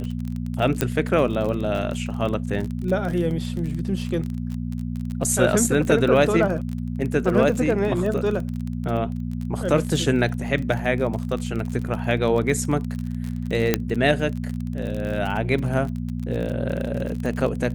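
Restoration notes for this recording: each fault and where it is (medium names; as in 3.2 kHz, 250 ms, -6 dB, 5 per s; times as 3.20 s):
crackle 34 per s -27 dBFS
hum 60 Hz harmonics 4 -28 dBFS
0.81 s: pop -5 dBFS
13.74 s: pop -3 dBFS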